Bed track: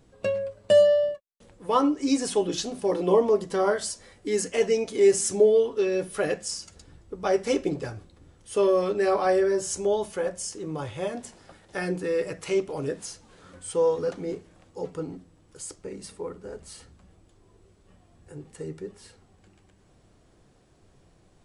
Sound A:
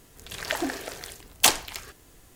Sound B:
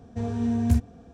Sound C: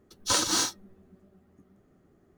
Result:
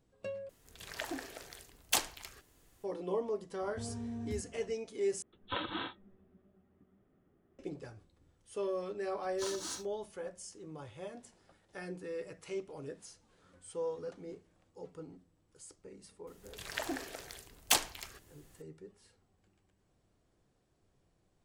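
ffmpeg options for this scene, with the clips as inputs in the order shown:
-filter_complex "[1:a]asplit=2[a][b];[3:a]asplit=2[c][d];[0:a]volume=-14.5dB[e];[2:a]acompressor=threshold=-30dB:ratio=6:attack=3.2:release=140:knee=1:detection=peak[f];[c]aresample=8000,aresample=44100[g];[e]asplit=3[h][i][j];[h]atrim=end=0.494[k];[a]atrim=end=2.35,asetpts=PTS-STARTPTS,volume=-11.5dB[l];[i]atrim=start=2.836:end=5.224[m];[g]atrim=end=2.37,asetpts=PTS-STARTPTS,volume=-8dB[n];[j]atrim=start=7.586[o];[f]atrim=end=1.13,asetpts=PTS-STARTPTS,volume=-7.5dB,afade=t=in:d=0.004:c=hsin,afade=t=out:st=1.126:d=0.004:c=hsin,adelay=159201S[p];[d]atrim=end=2.37,asetpts=PTS-STARTPTS,volume=-17dB,afade=t=in:d=0.004:c=hsin,afade=t=out:st=2.366:d=0.004:c=hsin,adelay=9120[q];[b]atrim=end=2.35,asetpts=PTS-STARTPTS,volume=-9dB,afade=t=in:d=0.004:c=hsin,afade=t=out:st=2.346:d=0.004:c=hsin,adelay=16270[r];[k][l]acrossfade=d=0.004:c1=hsin:c2=hsin[s];[s][m]acrossfade=d=0.004:c1=hsin:c2=hsin[t];[t][n]acrossfade=d=0.004:c1=hsin:c2=hsin[u];[u][o]acrossfade=d=0.004:c1=hsin:c2=hsin[v];[v][p][q][r]amix=inputs=4:normalize=0"

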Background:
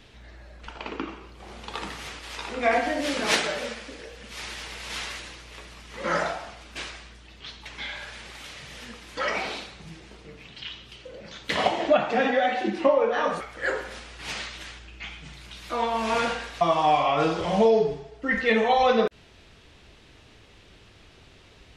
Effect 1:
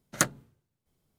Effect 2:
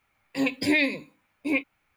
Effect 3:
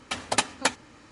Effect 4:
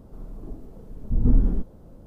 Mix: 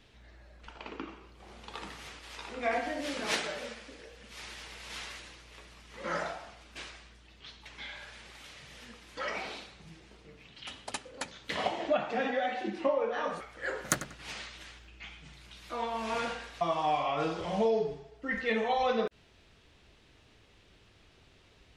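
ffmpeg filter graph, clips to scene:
-filter_complex "[0:a]volume=-8.5dB[a];[1:a]asplit=2[b][c];[c]adelay=94,lowpass=f=4.3k:p=1,volume=-11dB,asplit=2[d][e];[e]adelay=94,lowpass=f=4.3k:p=1,volume=0.3,asplit=2[f][g];[g]adelay=94,lowpass=f=4.3k:p=1,volume=0.3[h];[b][d][f][h]amix=inputs=4:normalize=0[i];[3:a]atrim=end=1.11,asetpts=PTS-STARTPTS,volume=-14.5dB,afade=t=in:d=0.004:c=hsin,afade=t=out:st=1.106:d=0.004:c=hsin,adelay=10560[j];[i]atrim=end=1.18,asetpts=PTS-STARTPTS,volume=-4.5dB,afade=t=in:d=0.004:c=hsin,afade=t=out:st=1.176:d=0.004:c=hsin,adelay=13710[k];[a][j][k]amix=inputs=3:normalize=0"

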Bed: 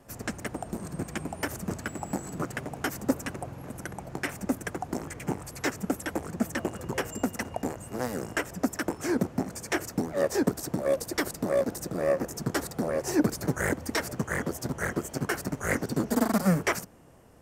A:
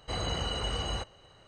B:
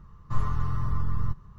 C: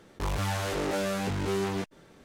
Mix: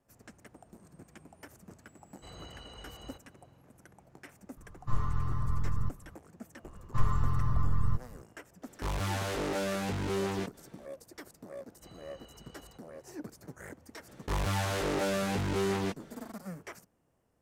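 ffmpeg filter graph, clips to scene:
-filter_complex "[1:a]asplit=2[a][b];[2:a]asplit=2[c][d];[3:a]asplit=2[e][f];[0:a]volume=-19dB[g];[b]alimiter=level_in=5dB:limit=-24dB:level=0:latency=1:release=208,volume=-5dB[h];[a]atrim=end=1.47,asetpts=PTS-STARTPTS,volume=-16.5dB,afade=t=in:d=0.004:c=hsin,afade=t=out:st=1.466:d=0.004:c=hsin,adelay=2140[i];[c]atrim=end=1.58,asetpts=PTS-STARTPTS,volume=-4dB,afade=t=in:d=0.004:c=hsin,afade=t=out:st=1.576:d=0.004:c=hsin,adelay=201537S[j];[d]atrim=end=1.58,asetpts=PTS-STARTPTS,volume=-1dB,afade=t=in:d=0.004:c=hsin,afade=t=out:st=1.576:d=0.004:c=hsin,adelay=6640[k];[e]atrim=end=2.24,asetpts=PTS-STARTPTS,volume=-3dB,afade=t=in:d=0.004:c=hsin,afade=t=out:st=2.236:d=0.004:c=hsin,adelay=8620[l];[h]atrim=end=1.47,asetpts=PTS-STARTPTS,volume=-18dB,afade=t=in:d=0.004:c=hsin,afade=t=out:st=1.466:d=0.004:c=hsin,adelay=11740[m];[f]atrim=end=2.24,asetpts=PTS-STARTPTS,volume=-1dB,afade=t=in:d=0.004:c=hsin,afade=t=out:st=2.236:d=0.004:c=hsin,adelay=14080[n];[g][i][j][k][l][m][n]amix=inputs=7:normalize=0"

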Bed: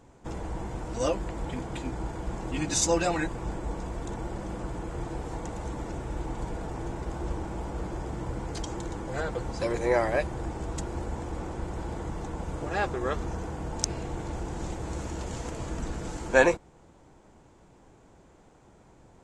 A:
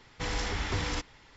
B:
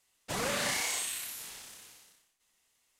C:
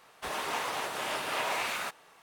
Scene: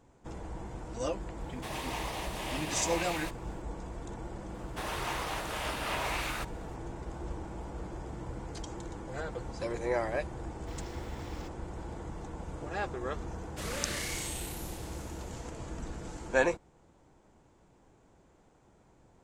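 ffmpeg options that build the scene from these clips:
-filter_complex "[3:a]asplit=2[a][b];[0:a]volume=-6.5dB[c];[a]equalizer=f=1.4k:t=o:w=0.34:g=-12.5[d];[1:a]acrusher=bits=6:mix=0:aa=0.5[e];[2:a]asuperstop=centerf=830:order=4:qfactor=2.1[f];[d]atrim=end=2.22,asetpts=PTS-STARTPTS,volume=-3.5dB,afade=t=in:d=0.004:c=hsin,afade=t=out:st=2.216:d=0.004:c=hsin,adelay=1400[g];[b]atrim=end=2.22,asetpts=PTS-STARTPTS,volume=-2.5dB,afade=t=in:d=0.004:c=hsin,afade=t=out:st=2.216:d=0.004:c=hsin,adelay=4540[h];[e]atrim=end=1.36,asetpts=PTS-STARTPTS,volume=-17dB,afade=t=in:d=0.004:c=hsin,afade=t=out:st=1.356:d=0.004:c=hsin,adelay=10470[i];[f]atrim=end=2.99,asetpts=PTS-STARTPTS,volume=-5dB,afade=t=in:d=0.004:c=hsin,afade=t=out:st=2.986:d=0.004:c=hsin,adelay=13280[j];[c][g][h][i][j]amix=inputs=5:normalize=0"

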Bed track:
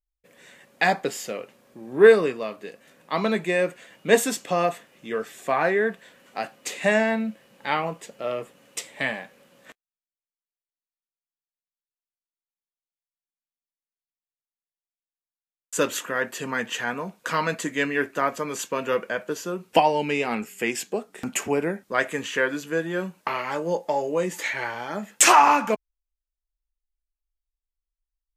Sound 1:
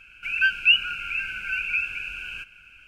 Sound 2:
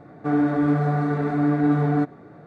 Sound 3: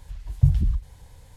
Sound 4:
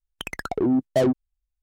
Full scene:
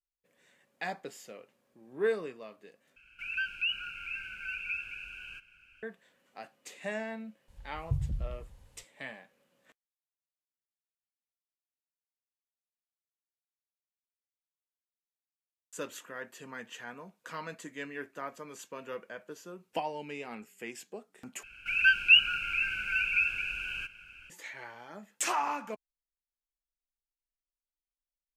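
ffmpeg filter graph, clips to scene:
-filter_complex "[1:a]asplit=2[a][b];[0:a]volume=-16dB[c];[a]alimiter=limit=-13.5dB:level=0:latency=1:release=50[d];[3:a]aecho=1:1:98|196|294|392|490|588:0.447|0.214|0.103|0.0494|0.0237|0.0114[e];[c]asplit=3[f][g][h];[f]atrim=end=2.964[i];[d]atrim=end=2.87,asetpts=PTS-STARTPTS,volume=-10.5dB[j];[g]atrim=start=5.826:end=21.434[k];[b]atrim=end=2.87,asetpts=PTS-STARTPTS,volume=-2dB[l];[h]atrim=start=24.296[m];[e]atrim=end=1.36,asetpts=PTS-STARTPTS,volume=-14dB,afade=t=in:d=0.004:c=hsin,afade=t=out:st=1.356:d=0.004:c=hsin,adelay=7480[n];[i][j]acrossfade=d=0.004:c1=hsin:c2=hsin[o];[o][k]acrossfade=d=0.004:c1=hsin:c2=hsin[p];[p][l]acrossfade=d=0.004:c1=hsin:c2=hsin[q];[q][m]acrossfade=d=0.004:c1=hsin:c2=hsin[r];[r][n]amix=inputs=2:normalize=0"

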